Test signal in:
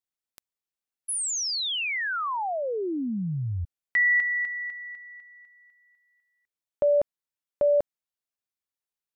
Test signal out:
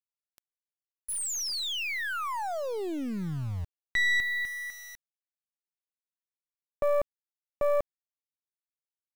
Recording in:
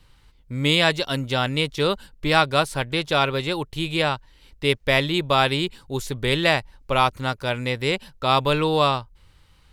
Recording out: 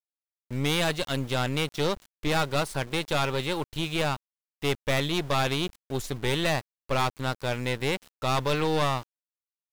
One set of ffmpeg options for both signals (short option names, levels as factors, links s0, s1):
-af "aeval=exprs='(tanh(11.2*val(0)+0.7)-tanh(0.7))/11.2':c=same,aeval=exprs='val(0)*gte(abs(val(0)),0.00891)':c=same"